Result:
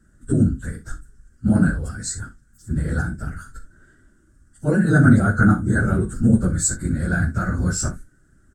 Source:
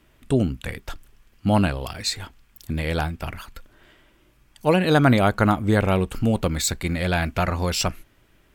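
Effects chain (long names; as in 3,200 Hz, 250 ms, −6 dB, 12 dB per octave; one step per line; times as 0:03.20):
random phases in long frames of 50 ms
drawn EQ curve 230 Hz 0 dB, 1,000 Hz −21 dB, 1,500 Hz +2 dB, 2,400 Hz −30 dB, 3,500 Hz −23 dB, 8,200 Hz +3 dB, 13,000 Hz −20 dB
ambience of single reflections 39 ms −11.5 dB, 62 ms −15 dB
dynamic equaliser 3,100 Hz, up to −6 dB, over −58 dBFS, Q 3.7
level +4.5 dB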